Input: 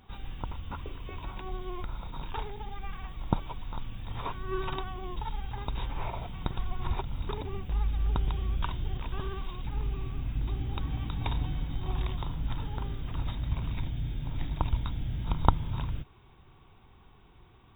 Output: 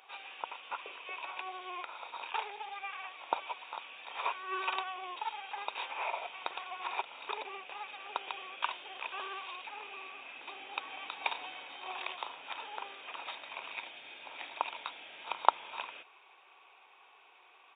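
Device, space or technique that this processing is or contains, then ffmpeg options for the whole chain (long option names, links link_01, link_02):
musical greeting card: -af "aresample=8000,aresample=44100,highpass=frequency=540:width=0.5412,highpass=frequency=540:width=1.3066,equalizer=frequency=2500:width_type=o:width=0.23:gain=11,volume=2.5dB"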